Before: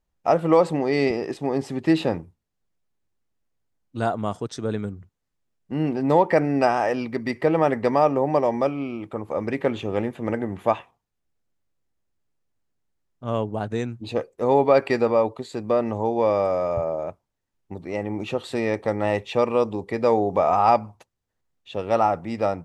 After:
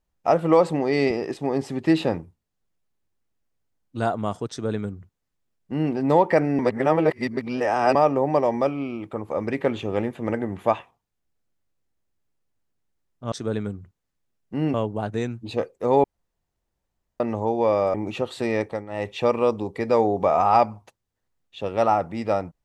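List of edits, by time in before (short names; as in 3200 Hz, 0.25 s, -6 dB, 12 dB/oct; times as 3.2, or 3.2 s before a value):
4.5–5.92 copy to 13.32
6.59–7.95 reverse
14.62–15.78 room tone
16.52–18.07 cut
18.74–19.27 dip -13.5 dB, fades 0.25 s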